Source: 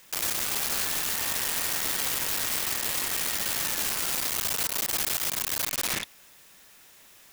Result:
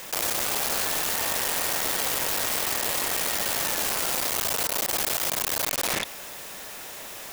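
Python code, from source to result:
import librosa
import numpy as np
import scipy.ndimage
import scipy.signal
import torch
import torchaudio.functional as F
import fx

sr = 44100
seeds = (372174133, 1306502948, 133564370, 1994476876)

y = fx.peak_eq(x, sr, hz=610.0, db=7.5, octaves=1.6)
y = fx.env_flatten(y, sr, amount_pct=50)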